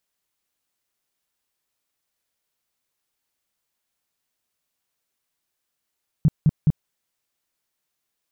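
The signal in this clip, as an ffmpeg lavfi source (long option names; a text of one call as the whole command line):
ffmpeg -f lavfi -i "aevalsrc='0.266*sin(2*PI*153*mod(t,0.21))*lt(mod(t,0.21),5/153)':duration=0.63:sample_rate=44100" out.wav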